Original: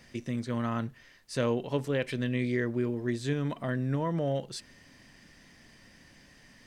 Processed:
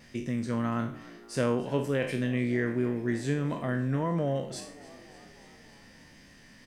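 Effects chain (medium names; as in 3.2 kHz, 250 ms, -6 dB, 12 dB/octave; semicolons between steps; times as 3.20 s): spectral sustain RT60 0.45 s; dynamic bell 3.9 kHz, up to -7 dB, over -57 dBFS, Q 2.1; vibrato 1.5 Hz 22 cents; peaking EQ 210 Hz +2.5 dB 0.77 oct; on a send: frequency-shifting echo 289 ms, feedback 64%, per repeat +58 Hz, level -20 dB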